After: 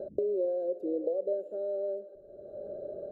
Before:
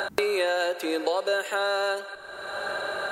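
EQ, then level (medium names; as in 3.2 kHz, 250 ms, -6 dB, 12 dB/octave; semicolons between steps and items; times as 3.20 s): elliptic low-pass 590 Hz, stop band 40 dB; -3.0 dB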